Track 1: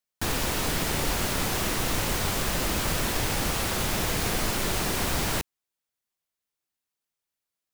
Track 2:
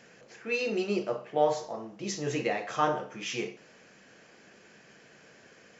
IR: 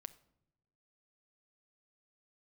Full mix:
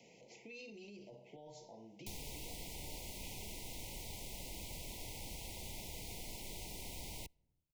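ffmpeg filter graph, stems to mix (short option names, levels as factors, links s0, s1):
-filter_complex "[0:a]adelay=1850,volume=0.237,asplit=2[s0][s1];[s1]volume=0.251[s2];[1:a]acrossover=split=310[s3][s4];[s4]acompressor=threshold=0.00631:ratio=2[s5];[s3][s5]amix=inputs=2:normalize=0,alimiter=level_in=2.99:limit=0.0631:level=0:latency=1:release=22,volume=0.335,volume=0.562[s6];[2:a]atrim=start_sample=2205[s7];[s2][s7]afir=irnorm=-1:irlink=0[s8];[s0][s6][s8]amix=inputs=3:normalize=0,acrossover=split=86|2300[s9][s10][s11];[s9]acompressor=threshold=0.00398:ratio=4[s12];[s10]acompressor=threshold=0.00224:ratio=4[s13];[s11]acompressor=threshold=0.00355:ratio=4[s14];[s12][s13][s14]amix=inputs=3:normalize=0,asuperstop=centerf=1400:order=20:qfactor=1.4"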